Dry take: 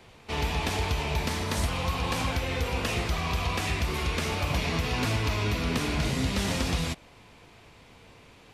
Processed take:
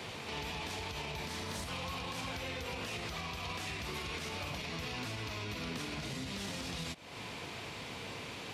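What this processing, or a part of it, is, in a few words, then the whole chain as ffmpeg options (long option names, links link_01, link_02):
broadcast voice chain: -af "highpass=98,deesser=0.65,acompressor=threshold=-44dB:ratio=5,equalizer=frequency=4100:width_type=o:width=1.8:gain=4,alimiter=level_in=15.5dB:limit=-24dB:level=0:latency=1:release=75,volume=-15.5dB,volume=8.5dB"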